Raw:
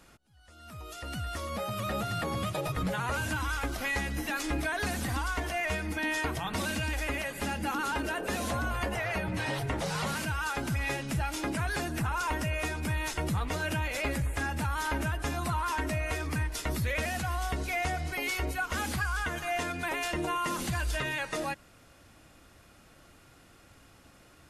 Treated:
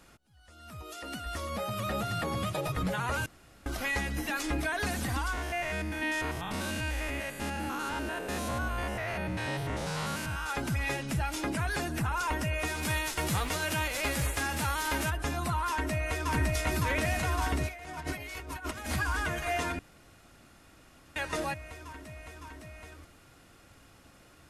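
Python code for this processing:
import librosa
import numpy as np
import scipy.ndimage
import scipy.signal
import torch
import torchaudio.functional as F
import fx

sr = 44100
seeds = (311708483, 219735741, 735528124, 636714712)

y = fx.low_shelf_res(x, sr, hz=180.0, db=-10.5, q=1.5, at=(0.82, 1.26))
y = fx.spec_steps(y, sr, hold_ms=100, at=(5.32, 10.48), fade=0.02)
y = fx.envelope_flatten(y, sr, power=0.6, at=(12.67, 15.09), fade=0.02)
y = fx.echo_throw(y, sr, start_s=15.69, length_s=0.63, ms=560, feedback_pct=85, wet_db=-0.5)
y = fx.over_compress(y, sr, threshold_db=-36.0, ratio=-0.5, at=(17.67, 18.88), fade=0.02)
y = fx.edit(y, sr, fx.room_tone_fill(start_s=3.26, length_s=0.4),
    fx.room_tone_fill(start_s=19.79, length_s=1.37), tone=tone)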